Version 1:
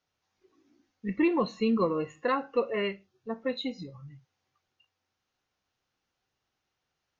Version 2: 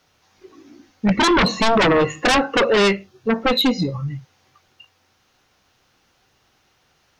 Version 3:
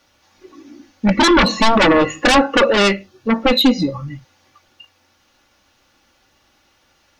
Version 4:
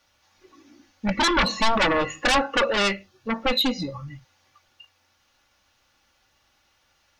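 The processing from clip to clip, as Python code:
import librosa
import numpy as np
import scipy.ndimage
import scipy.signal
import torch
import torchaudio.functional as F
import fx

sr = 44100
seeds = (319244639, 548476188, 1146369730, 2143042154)

y1 = fx.fold_sine(x, sr, drive_db=13, ceiling_db=-15.5)
y1 = F.gain(torch.from_numpy(y1), 3.5).numpy()
y2 = y1 + 0.5 * np.pad(y1, (int(3.5 * sr / 1000.0), 0))[:len(y1)]
y2 = F.gain(torch.from_numpy(y2), 2.5).numpy()
y3 = fx.peak_eq(y2, sr, hz=300.0, db=-7.0, octaves=1.6)
y3 = F.gain(torch.from_numpy(y3), -6.0).numpy()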